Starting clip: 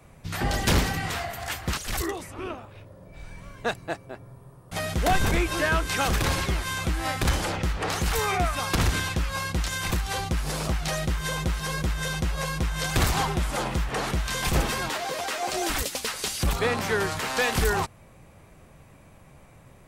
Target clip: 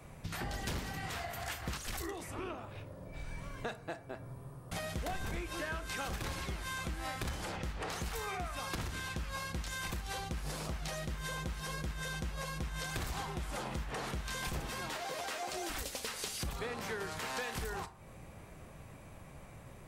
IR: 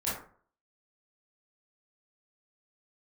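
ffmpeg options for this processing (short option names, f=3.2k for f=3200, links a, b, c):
-filter_complex "[0:a]acompressor=threshold=-37dB:ratio=6,asplit=2[a][b];[1:a]atrim=start_sample=2205[c];[b][c]afir=irnorm=-1:irlink=0,volume=-16.5dB[d];[a][d]amix=inputs=2:normalize=0,volume=-1.5dB"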